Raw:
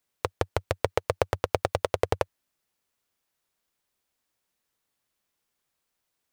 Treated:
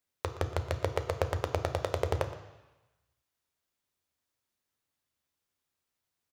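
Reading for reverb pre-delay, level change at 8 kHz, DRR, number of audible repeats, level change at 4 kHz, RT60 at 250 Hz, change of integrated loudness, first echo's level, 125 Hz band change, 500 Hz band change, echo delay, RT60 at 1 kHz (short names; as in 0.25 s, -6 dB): 3 ms, -5.0 dB, 6.5 dB, 1, -5.0 dB, 1.0 s, -4.0 dB, -17.0 dB, +0.5 dB, -5.5 dB, 0.119 s, 1.2 s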